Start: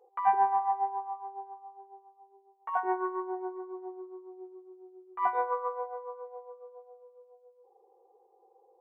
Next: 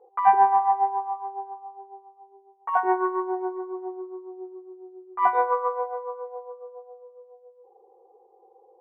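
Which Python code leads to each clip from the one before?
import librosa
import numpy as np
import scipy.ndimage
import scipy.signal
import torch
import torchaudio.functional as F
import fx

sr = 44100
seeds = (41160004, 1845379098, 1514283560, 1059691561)

y = fx.env_lowpass(x, sr, base_hz=1000.0, full_db=-29.0)
y = y * 10.0 ** (7.5 / 20.0)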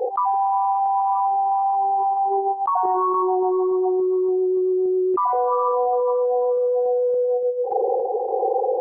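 y = fx.envelope_sharpen(x, sr, power=2.0)
y = fx.tremolo_random(y, sr, seeds[0], hz=3.5, depth_pct=55)
y = fx.env_flatten(y, sr, amount_pct=100)
y = y * 10.0 ** (-3.0 / 20.0)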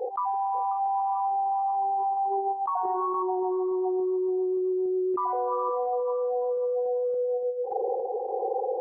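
y = x + 10.0 ** (-14.0 / 20.0) * np.pad(x, (int(538 * sr / 1000.0), 0))[:len(x)]
y = y * 10.0 ** (-7.5 / 20.0)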